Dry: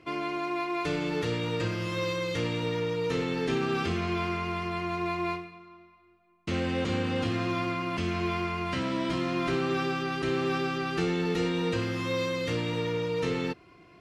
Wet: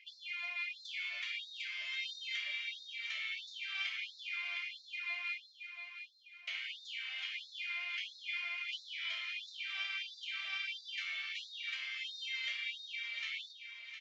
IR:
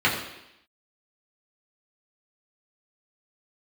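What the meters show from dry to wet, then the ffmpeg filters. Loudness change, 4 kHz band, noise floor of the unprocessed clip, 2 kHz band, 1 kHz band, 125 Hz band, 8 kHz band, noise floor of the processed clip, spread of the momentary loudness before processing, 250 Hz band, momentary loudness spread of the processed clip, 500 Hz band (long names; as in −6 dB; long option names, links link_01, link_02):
−9.5 dB, −1.5 dB, −57 dBFS, −3.0 dB, −24.5 dB, below −40 dB, −11.0 dB, −58 dBFS, 4 LU, below −40 dB, 5 LU, below −40 dB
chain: -filter_complex "[0:a]bass=frequency=250:gain=13,treble=frequency=4000:gain=6,asplit=2[link_01][link_02];[link_02]acompressor=threshold=-30dB:ratio=6,volume=1.5dB[link_03];[link_01][link_03]amix=inputs=2:normalize=0,asplit=3[link_04][link_05][link_06];[link_04]bandpass=frequency=270:width_type=q:width=8,volume=0dB[link_07];[link_05]bandpass=frequency=2290:width_type=q:width=8,volume=-6dB[link_08];[link_06]bandpass=frequency=3010:width_type=q:width=8,volume=-9dB[link_09];[link_07][link_08][link_09]amix=inputs=3:normalize=0,aresample=16000,aresample=44100,aecho=1:1:709|1418|2127|2836|3545:0.355|0.156|0.0687|0.0302|0.0133,afftfilt=real='re*gte(b*sr/1024,590*pow(3600/590,0.5+0.5*sin(2*PI*1.5*pts/sr)))':imag='im*gte(b*sr/1024,590*pow(3600/590,0.5+0.5*sin(2*PI*1.5*pts/sr)))':win_size=1024:overlap=0.75,volume=6dB"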